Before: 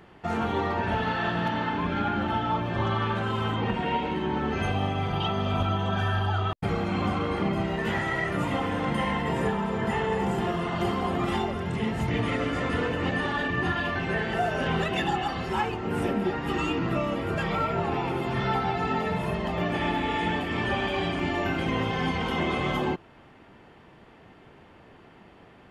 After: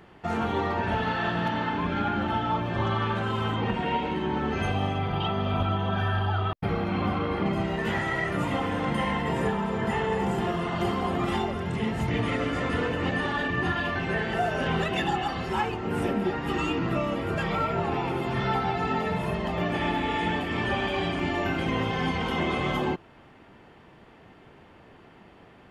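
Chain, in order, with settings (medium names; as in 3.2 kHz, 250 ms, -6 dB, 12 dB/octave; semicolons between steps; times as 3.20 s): 4.98–7.46 s: peaking EQ 7.5 kHz -14 dB 0.78 oct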